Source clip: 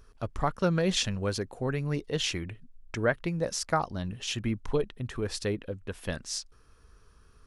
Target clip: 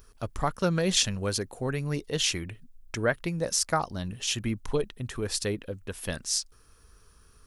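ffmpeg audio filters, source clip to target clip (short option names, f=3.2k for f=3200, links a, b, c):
-af "aemphasis=mode=production:type=50kf"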